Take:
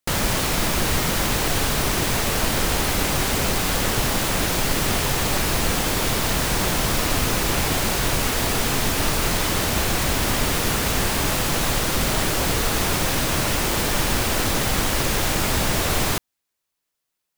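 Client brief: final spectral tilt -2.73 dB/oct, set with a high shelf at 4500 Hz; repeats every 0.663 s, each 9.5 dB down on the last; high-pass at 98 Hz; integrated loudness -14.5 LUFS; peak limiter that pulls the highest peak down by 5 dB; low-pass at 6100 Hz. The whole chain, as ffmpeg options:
-af "highpass=98,lowpass=6.1k,highshelf=f=4.5k:g=6,alimiter=limit=-14.5dB:level=0:latency=1,aecho=1:1:663|1326|1989|2652:0.335|0.111|0.0365|0.012,volume=8dB"

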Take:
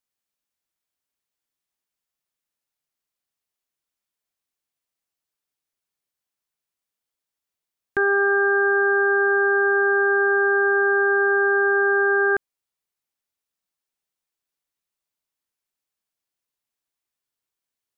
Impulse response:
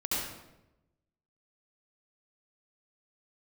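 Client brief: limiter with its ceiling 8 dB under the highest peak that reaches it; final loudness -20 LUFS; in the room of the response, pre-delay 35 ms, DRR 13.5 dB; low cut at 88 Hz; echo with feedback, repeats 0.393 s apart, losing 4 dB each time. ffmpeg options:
-filter_complex "[0:a]highpass=88,alimiter=limit=-20dB:level=0:latency=1,aecho=1:1:393|786|1179|1572|1965|2358|2751|3144|3537:0.631|0.398|0.25|0.158|0.0994|0.0626|0.0394|0.0249|0.0157,asplit=2[a][b];[1:a]atrim=start_sample=2205,adelay=35[c];[b][c]afir=irnorm=-1:irlink=0,volume=-20.5dB[d];[a][d]amix=inputs=2:normalize=0,volume=7dB"

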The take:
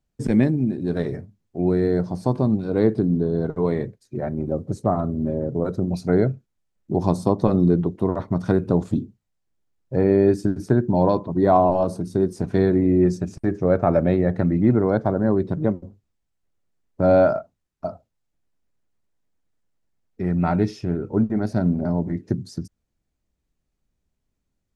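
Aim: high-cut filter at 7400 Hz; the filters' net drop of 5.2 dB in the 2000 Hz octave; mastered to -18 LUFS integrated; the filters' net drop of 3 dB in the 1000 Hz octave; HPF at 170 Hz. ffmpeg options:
-af "highpass=170,lowpass=7.4k,equalizer=f=1k:t=o:g=-3.5,equalizer=f=2k:t=o:g=-5.5,volume=5.5dB"

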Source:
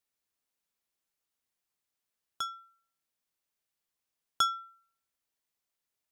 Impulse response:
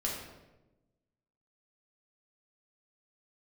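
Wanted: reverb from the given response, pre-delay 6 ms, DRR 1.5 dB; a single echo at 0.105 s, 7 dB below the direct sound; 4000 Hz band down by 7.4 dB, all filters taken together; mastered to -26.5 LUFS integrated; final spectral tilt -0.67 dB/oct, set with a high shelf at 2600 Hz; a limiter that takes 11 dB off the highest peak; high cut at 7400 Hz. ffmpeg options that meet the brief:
-filter_complex "[0:a]lowpass=7.4k,highshelf=f=2.6k:g=-5,equalizer=f=4k:t=o:g=-5,alimiter=level_in=5dB:limit=-24dB:level=0:latency=1,volume=-5dB,aecho=1:1:105:0.447,asplit=2[a][b];[1:a]atrim=start_sample=2205,adelay=6[c];[b][c]afir=irnorm=-1:irlink=0,volume=-6dB[d];[a][d]amix=inputs=2:normalize=0,volume=10.5dB"

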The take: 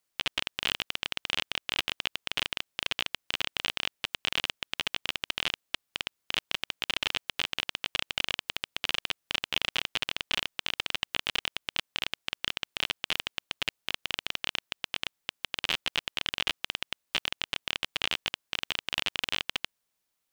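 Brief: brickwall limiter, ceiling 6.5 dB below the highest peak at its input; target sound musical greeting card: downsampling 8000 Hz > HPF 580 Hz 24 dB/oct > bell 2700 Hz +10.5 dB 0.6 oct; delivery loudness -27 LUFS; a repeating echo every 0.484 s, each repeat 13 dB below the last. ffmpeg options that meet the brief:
-af "alimiter=limit=-13.5dB:level=0:latency=1,aecho=1:1:484|968|1452:0.224|0.0493|0.0108,aresample=8000,aresample=44100,highpass=f=580:w=0.5412,highpass=f=580:w=1.3066,equalizer=f=2.7k:t=o:w=0.6:g=10.5,volume=0.5dB"

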